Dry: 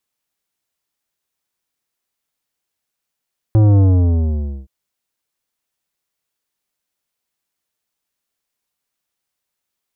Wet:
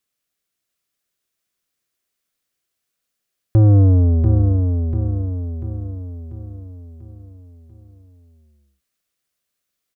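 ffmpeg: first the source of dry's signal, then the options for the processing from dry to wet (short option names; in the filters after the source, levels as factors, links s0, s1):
-f lavfi -i "aevalsrc='0.355*clip((1.12-t)/0.89,0,1)*tanh(3.98*sin(2*PI*110*1.12/log(65/110)*(exp(log(65/110)*t/1.12)-1)))/tanh(3.98)':d=1.12:s=44100"
-af "equalizer=f=890:t=o:w=0.25:g=-12.5,aecho=1:1:691|1382|2073|2764|3455|4146:0.562|0.276|0.135|0.0662|0.0324|0.0159"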